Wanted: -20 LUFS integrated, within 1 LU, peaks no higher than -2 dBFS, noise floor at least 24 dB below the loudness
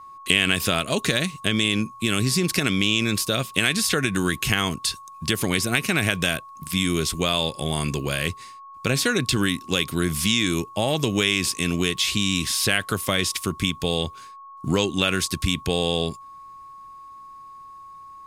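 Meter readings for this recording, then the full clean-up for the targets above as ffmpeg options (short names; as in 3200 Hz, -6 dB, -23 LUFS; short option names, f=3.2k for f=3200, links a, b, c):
steady tone 1100 Hz; tone level -40 dBFS; loudness -22.5 LUFS; peak -1.5 dBFS; loudness target -20.0 LUFS
-> -af "bandreject=f=1.1k:w=30"
-af "volume=2.5dB,alimiter=limit=-2dB:level=0:latency=1"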